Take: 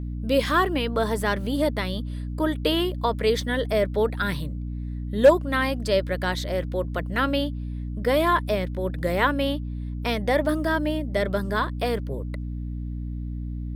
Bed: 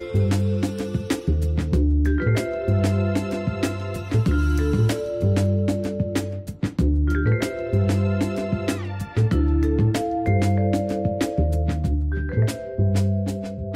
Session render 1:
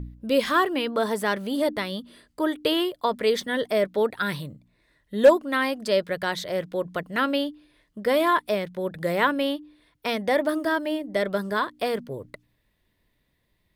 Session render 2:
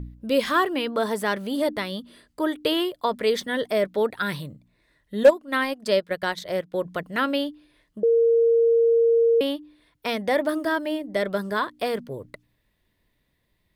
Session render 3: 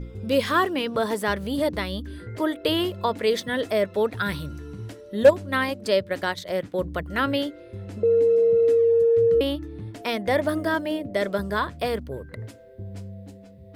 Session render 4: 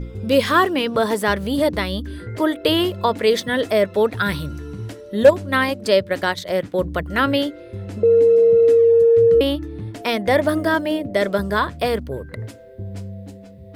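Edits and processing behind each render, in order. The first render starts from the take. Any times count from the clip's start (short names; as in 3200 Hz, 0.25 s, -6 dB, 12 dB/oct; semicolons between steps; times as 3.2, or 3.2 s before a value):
de-hum 60 Hz, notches 5
5.23–6.81 transient shaper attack +2 dB, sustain -10 dB; 8.03–9.41 bleep 462 Hz -15 dBFS
add bed -17 dB
gain +5.5 dB; limiter -3 dBFS, peak gain reduction 2.5 dB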